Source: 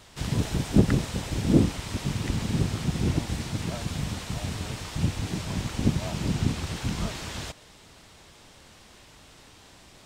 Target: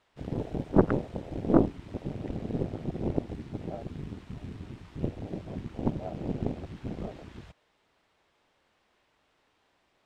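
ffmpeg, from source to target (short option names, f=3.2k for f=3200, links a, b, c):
-af "afwtdn=0.0282,aeval=exprs='0.631*(cos(1*acos(clip(val(0)/0.631,-1,1)))-cos(1*PI/2))+0.0891*(cos(6*acos(clip(val(0)/0.631,-1,1)))-cos(6*PI/2))+0.0158*(cos(7*acos(clip(val(0)/0.631,-1,1)))-cos(7*PI/2))':c=same,bass=f=250:g=-11,treble=f=4k:g=-14,volume=3dB"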